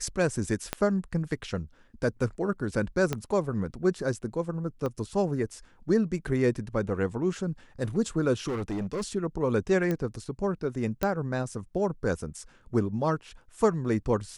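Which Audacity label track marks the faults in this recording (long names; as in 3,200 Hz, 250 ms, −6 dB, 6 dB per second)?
0.730000	0.730000	click −12 dBFS
3.130000	3.130000	click −14 dBFS
4.860000	4.860000	click −20 dBFS
8.470000	9.030000	clipping −27.5 dBFS
9.910000	9.910000	click −17 dBFS
11.030000	11.030000	click −13 dBFS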